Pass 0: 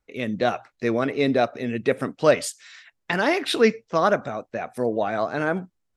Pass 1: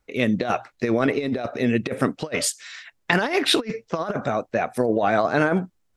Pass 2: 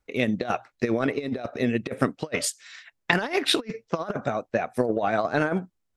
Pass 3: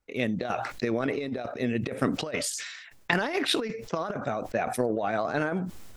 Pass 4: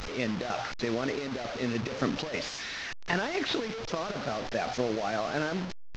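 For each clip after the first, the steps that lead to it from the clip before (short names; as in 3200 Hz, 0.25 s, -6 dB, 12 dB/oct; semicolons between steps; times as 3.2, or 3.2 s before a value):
negative-ratio compressor -24 dBFS, ratio -0.5; gain +3.5 dB
transient shaper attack +5 dB, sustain -3 dB; gain -5 dB
sustainer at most 47 dB/s; gain -4.5 dB
delta modulation 32 kbps, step -28 dBFS; gain -3 dB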